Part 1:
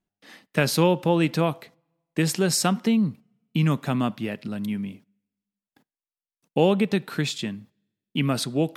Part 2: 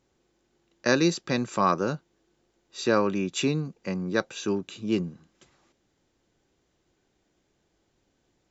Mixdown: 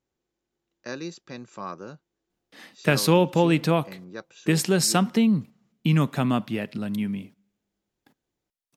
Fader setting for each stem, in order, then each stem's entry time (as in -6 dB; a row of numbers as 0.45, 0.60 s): +1.0, -12.5 dB; 2.30, 0.00 s